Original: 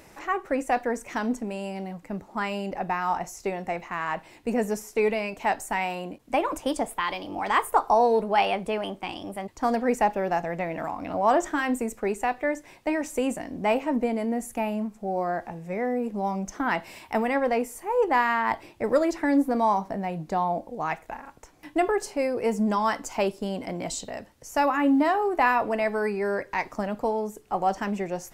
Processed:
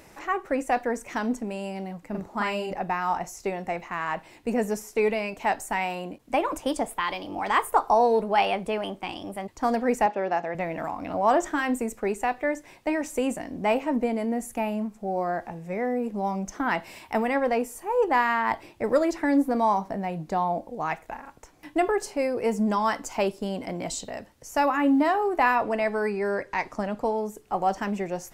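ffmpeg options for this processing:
-filter_complex "[0:a]asettb=1/sr,asplit=3[s0][s1][s2];[s0]atrim=end=2.104[s3];[s1]atrim=start=2.1:end=2.73,asetpts=PTS-STARTPTS,afade=t=in:d=0.004:c=qsin,afade=t=out:st=0.626:d=0.004:c=qsin,asplit=2[s4][s5];[s5]adelay=43,volume=0.794[s6];[s4][s6]amix=inputs=2:normalize=0,atrim=end_sample=27783[s7];[s2]atrim=start=2.726[s8];[s3][s7]acrossfade=d=0.004:c1=hsin:c2=qsin[s9];[s9][s8]acrossfade=d=0.004:c1=qsin:c2=hsin,asettb=1/sr,asplit=3[s10][s11][s12];[s10]atrim=end=10.064[s13];[s11]atrim=start=10.06:end=10.55,asetpts=PTS-STARTPTS,afade=t=in:d=0.004:c=qsin,afade=t=out:st=0.486:d=0.004:c=qsin,highpass=240,lowpass=5000[s14];[s12]atrim=start=10.546[s15];[s13][s14]acrossfade=d=0.004:c1=hsin:c2=qsin[s16];[s16][s15]acrossfade=d=0.004:c1=qsin:c2=hsin,asettb=1/sr,asplit=3[s17][s18][s19];[s17]atrim=end=17.554[s20];[s18]atrim=start=17.55:end=18.12,asetpts=PTS-STARTPTS,afade=t=in:d=0.004:c=qsin,afade=t=out:st=0.566:d=0.004:c=qsin,bandreject=f=2100:w=10[s21];[s19]atrim=start=18.116[s22];[s20][s21]acrossfade=d=0.004:c1=hsin:c2=qsin[s23];[s23][s22]acrossfade=d=0.004:c1=qsin:c2=hsin,asettb=1/sr,asplit=3[s24][s25][s26];[s24]atrim=end=25.554[s27];[s25]atrim=start=25.55:end=27.14,asetpts=PTS-STARTPTS,afade=t=in:d=0.004:c=qsin,afade=t=out:st=1.586:d=0.004:c=qsin,lowpass=11000[s28];[s26]atrim=start=27.136[s29];[s27][s28]acrossfade=d=0.004:c1=hsin:c2=qsin[s30];[s30][s29]acrossfade=d=0.004:c1=qsin:c2=hsin"

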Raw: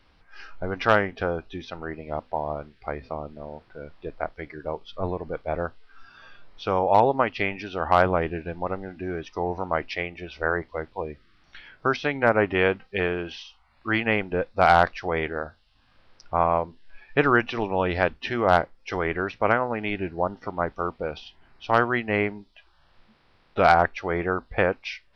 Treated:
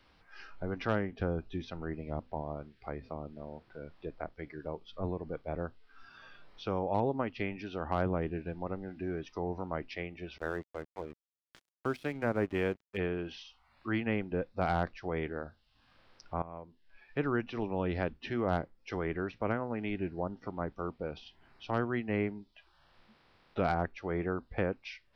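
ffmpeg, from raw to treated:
-filter_complex "[0:a]asettb=1/sr,asplit=3[s0][s1][s2];[s0]atrim=end=1.194[s3];[s1]atrim=start=1.19:end=2.42,asetpts=PTS-STARTPTS,afade=t=in:d=0.004:c=qsin,afade=t=out:st=1.226:d=0.004:c=qsin,lowshelf=f=180:g=7[s4];[s2]atrim=start=2.416[s5];[s3][s4]acrossfade=d=0.004:c1=hsin:c2=qsin[s6];[s6][s5]acrossfade=d=0.004:c1=qsin:c2=hsin,asettb=1/sr,asplit=3[s7][s8][s9];[s7]atrim=end=10.384[s10];[s8]atrim=start=10.38:end=12.97,asetpts=PTS-STARTPTS,afade=t=in:d=0.004:c=qsin,afade=t=out:st=2.586:d=0.004:c=qsin,aeval=exprs='sgn(val(0))*max(abs(val(0))-0.0119,0)':c=same[s11];[s9]atrim=start=12.966[s12];[s10][s11]acrossfade=d=0.004:c1=hsin:c2=qsin[s13];[s13][s12]acrossfade=d=0.004:c1=qsin:c2=hsin,asplit=2[s14][s15];[s14]atrim=end=16.42,asetpts=PTS-STARTPTS,afade=t=out:st=16.416:d=0.004:c=hsin:silence=0.16788[s16];[s15]atrim=start=16.42,asetpts=PTS-STARTPTS,afade=t=in:d=1.34:silence=0.16788[s17];[s16][s17]concat=n=2:v=0:a=1,lowshelf=f=76:g=-7,acrossover=split=360[s18][s19];[s19]acompressor=threshold=0.00224:ratio=1.5[s20];[s18][s20]amix=inputs=2:normalize=0,volume=0.75"

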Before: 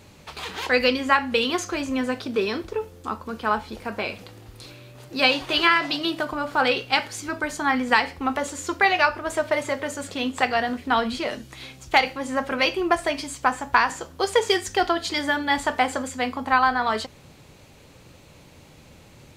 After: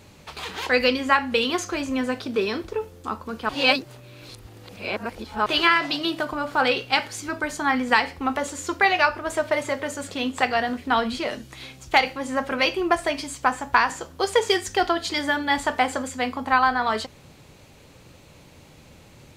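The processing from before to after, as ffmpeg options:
-filter_complex "[0:a]asplit=3[s0][s1][s2];[s0]atrim=end=3.492[s3];[s1]atrim=start=3.488:end=5.462,asetpts=PTS-STARTPTS,areverse[s4];[s2]atrim=start=5.458[s5];[s3][s4]acrossfade=d=0.004:c1=hsin:c2=hsin[s6];[s6][s5]acrossfade=d=0.004:c1=hsin:c2=hsin"

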